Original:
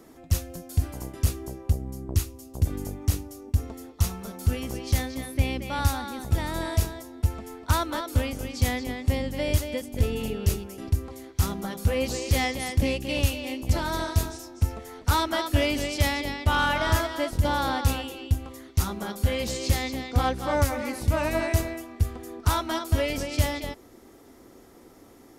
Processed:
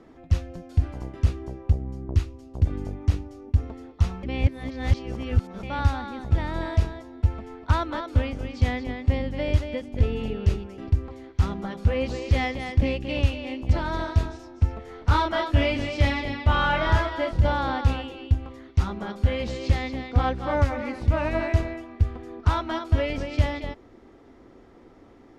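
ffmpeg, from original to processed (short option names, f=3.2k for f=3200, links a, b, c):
-filter_complex "[0:a]asettb=1/sr,asplit=3[a][b][c];[a]atrim=end=14.834[d];[b]atrim=start=14.83:end=17.52,asetpts=PTS-STARTPTS,afade=t=in:d=0.004:c=qsin,afade=t=out:st=2.686:d=0.004:c=qsin,asplit=2[e][f];[f]adelay=29,volume=-3.5dB[g];[e][g]amix=inputs=2:normalize=0,atrim=end_sample=118629[h];[c]atrim=start=17.516[i];[d][h]acrossfade=d=0.004:c1=hsin:c2=qsin[j];[j][i]acrossfade=d=0.004:c1=qsin:c2=hsin,asplit=3[k][l][m];[k]atrim=end=4.232[n];[l]atrim=start=4.228:end=5.632,asetpts=PTS-STARTPTS,areverse[o];[m]atrim=start=5.628[p];[n][o]acrossfade=d=0.004:c1=hsin:c2=hsin[q];[q][p]acrossfade=d=0.004:c1=hsin:c2=hsin,lowpass=3.1k,lowshelf=f=76:g=5.5"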